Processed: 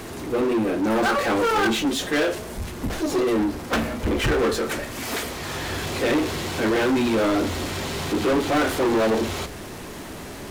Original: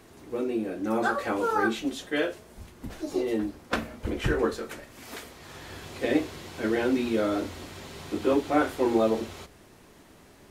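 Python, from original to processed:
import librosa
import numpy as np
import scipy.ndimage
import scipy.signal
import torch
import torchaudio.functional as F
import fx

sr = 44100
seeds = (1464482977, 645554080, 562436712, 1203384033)

y = fx.power_curve(x, sr, exponent=0.7)
y = 10.0 ** (-22.5 / 20.0) * np.tanh(y / 10.0 ** (-22.5 / 20.0))
y = F.gain(torch.from_numpy(y), 5.5).numpy()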